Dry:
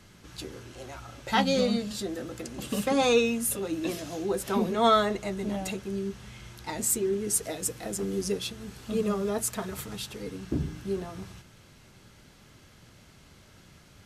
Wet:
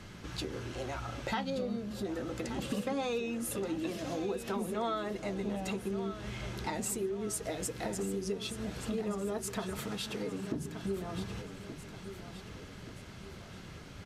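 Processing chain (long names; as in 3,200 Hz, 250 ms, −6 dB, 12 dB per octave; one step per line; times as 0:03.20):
high-shelf EQ 6,700 Hz −11 dB
downward compressor 5 to 1, threshold −40 dBFS, peak gain reduction 20 dB
0:01.50–0:02.05: flat-topped bell 4,100 Hz −9.5 dB 2.5 octaves
0:09.78–0:10.84: high-pass filter 130 Hz
on a send: repeating echo 1,177 ms, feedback 47%, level −11 dB
on the sum: level +6 dB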